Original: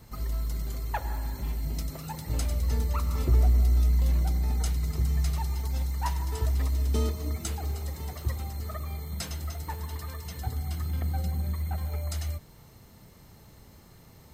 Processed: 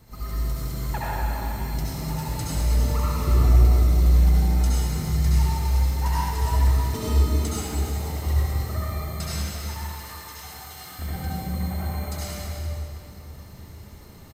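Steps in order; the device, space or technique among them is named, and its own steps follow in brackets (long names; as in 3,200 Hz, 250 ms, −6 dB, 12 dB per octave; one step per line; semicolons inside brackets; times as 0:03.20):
0:09.39–0:10.99: high-pass filter 1,300 Hz 6 dB per octave
cave (single-tap delay 335 ms −11.5 dB; convolution reverb RT60 2.7 s, pre-delay 62 ms, DRR −8.5 dB)
level −2 dB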